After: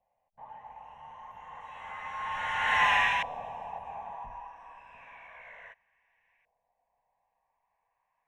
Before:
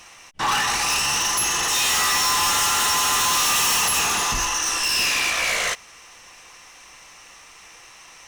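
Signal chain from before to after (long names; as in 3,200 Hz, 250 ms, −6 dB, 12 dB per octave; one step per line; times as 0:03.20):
source passing by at 0:02.86, 16 m/s, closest 2.7 metres
dynamic equaliser 4,200 Hz, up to +5 dB, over −38 dBFS, Q 1.3
auto-filter low-pass saw up 0.31 Hz 640–2,000 Hz
bass and treble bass −3 dB, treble +2 dB
phaser with its sweep stopped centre 1,300 Hz, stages 6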